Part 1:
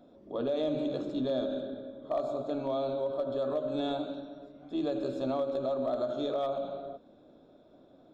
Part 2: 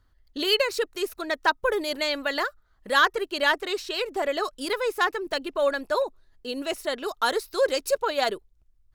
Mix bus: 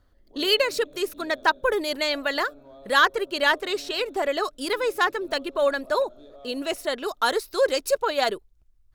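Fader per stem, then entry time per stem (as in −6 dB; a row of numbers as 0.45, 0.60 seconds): −16.0, +1.5 decibels; 0.00, 0.00 seconds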